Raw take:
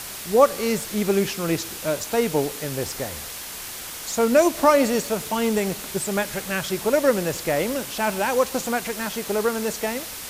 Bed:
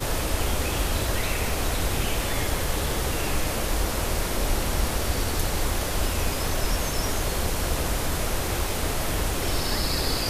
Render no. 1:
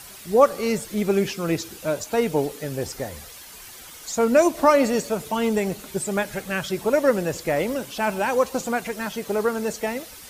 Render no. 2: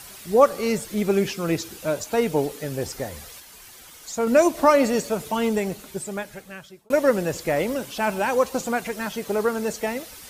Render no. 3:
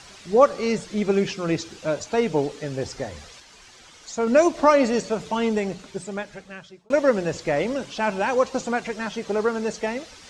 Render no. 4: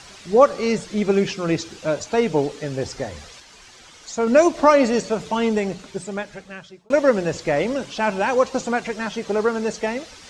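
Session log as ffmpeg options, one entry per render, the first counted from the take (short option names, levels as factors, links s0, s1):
-af "afftdn=nr=10:nf=-35"
-filter_complex "[0:a]asplit=4[s0][s1][s2][s3];[s0]atrim=end=3.402[s4];[s1]atrim=start=3.398:end=4.272,asetpts=PTS-STARTPTS,volume=0.668[s5];[s2]atrim=start=4.268:end=6.9,asetpts=PTS-STARTPTS,afade=t=out:st=1.132:d=1.5[s6];[s3]atrim=start=6.9,asetpts=PTS-STARTPTS,afade=t=in:d=0.004:c=hsin[s7];[s4][s5]acrossfade=d=0.004:c1=hsin:c2=hsin[s8];[s6][s7]concat=n=2:v=0:a=1[s9];[s8][s9]acrossfade=d=0.004:c1=hsin:c2=hsin"
-af "lowpass=f=6800:w=0.5412,lowpass=f=6800:w=1.3066,bandreject=f=60:t=h:w=6,bandreject=f=120:t=h:w=6,bandreject=f=180:t=h:w=6"
-af "volume=1.33,alimiter=limit=0.708:level=0:latency=1"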